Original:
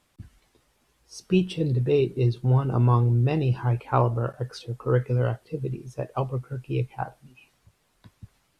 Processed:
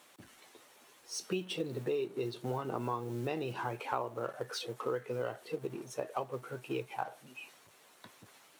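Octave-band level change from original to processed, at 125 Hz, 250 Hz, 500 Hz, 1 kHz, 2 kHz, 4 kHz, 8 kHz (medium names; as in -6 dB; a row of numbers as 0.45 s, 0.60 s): -22.0 dB, -12.5 dB, -9.0 dB, -7.5 dB, -4.5 dB, -2.5 dB, no reading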